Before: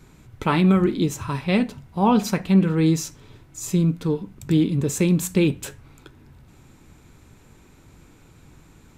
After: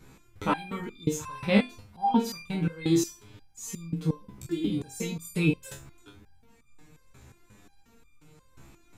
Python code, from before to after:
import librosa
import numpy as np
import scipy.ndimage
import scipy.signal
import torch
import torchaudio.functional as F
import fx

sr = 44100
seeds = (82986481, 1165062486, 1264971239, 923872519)

y = fx.room_flutter(x, sr, wall_m=4.1, rt60_s=0.26)
y = fx.resonator_held(y, sr, hz=5.6, low_hz=67.0, high_hz=1200.0)
y = F.gain(torch.from_numpy(y), 5.5).numpy()